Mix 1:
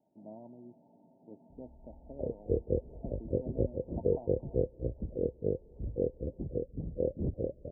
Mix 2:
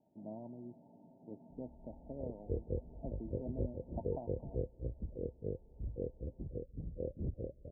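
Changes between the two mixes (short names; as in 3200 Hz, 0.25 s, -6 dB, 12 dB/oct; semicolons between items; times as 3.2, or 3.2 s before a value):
background -10.5 dB; master: add low shelf 140 Hz +9 dB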